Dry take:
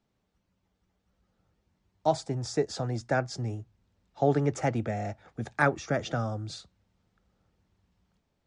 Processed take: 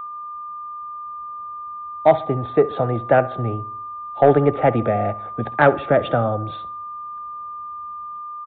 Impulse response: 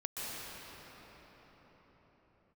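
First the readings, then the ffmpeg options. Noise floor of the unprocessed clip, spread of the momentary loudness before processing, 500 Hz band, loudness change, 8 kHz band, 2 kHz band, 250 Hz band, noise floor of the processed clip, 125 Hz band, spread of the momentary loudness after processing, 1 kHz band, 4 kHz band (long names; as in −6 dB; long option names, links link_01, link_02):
−77 dBFS, 11 LU, +13.0 dB, +11.0 dB, below −35 dB, +7.5 dB, +8.5 dB, −33 dBFS, +7.0 dB, 15 LU, +13.0 dB, can't be measured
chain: -filter_complex "[0:a]equalizer=frequency=580:width_type=o:width=1.5:gain=8,aeval=exprs='val(0)+0.0158*sin(2*PI*1200*n/s)':channel_layout=same,acontrast=82,asplit=2[link_01][link_02];[link_02]adelay=67,lowpass=frequency=2500:poles=1,volume=-17dB,asplit=2[link_03][link_04];[link_04]adelay=67,lowpass=frequency=2500:poles=1,volume=0.54,asplit=2[link_05][link_06];[link_06]adelay=67,lowpass=frequency=2500:poles=1,volume=0.54,asplit=2[link_07][link_08];[link_08]adelay=67,lowpass=frequency=2500:poles=1,volume=0.54,asplit=2[link_09][link_10];[link_10]adelay=67,lowpass=frequency=2500:poles=1,volume=0.54[link_11];[link_01][link_03][link_05][link_07][link_09][link_11]amix=inputs=6:normalize=0,aresample=8000,aresample=44100"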